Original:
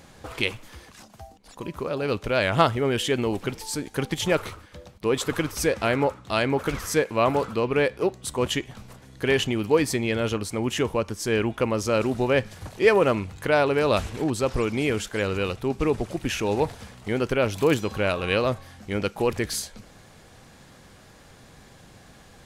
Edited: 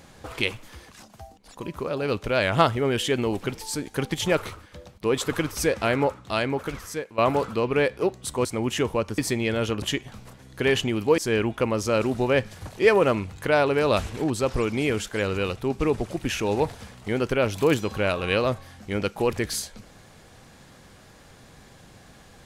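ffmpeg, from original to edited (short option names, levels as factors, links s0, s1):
-filter_complex "[0:a]asplit=6[s0][s1][s2][s3][s4][s5];[s0]atrim=end=7.18,asetpts=PTS-STARTPTS,afade=t=out:st=6.18:d=1:silence=0.188365[s6];[s1]atrim=start=7.18:end=8.452,asetpts=PTS-STARTPTS,afade=t=in:d=0.004:c=hsin:silence=0.188365[s7];[s2]atrim=start=10.448:end=11.182[s8];[s3]atrim=start=9.808:end=10.452[s9];[s4]atrim=start=8.448:end=9.812[s10];[s5]atrim=start=11.178[s11];[s6][s7]concat=n=2:v=0:a=1[s12];[s12][s8]acrossfade=d=0.004:c1=hsin:c2=hsin[s13];[s13][s9]acrossfade=d=0.004:c1=hsin:c2=hsin[s14];[s14][s10]acrossfade=d=0.004:c1=hsin:c2=hsin[s15];[s15][s11]acrossfade=d=0.004:c1=hsin:c2=hsin"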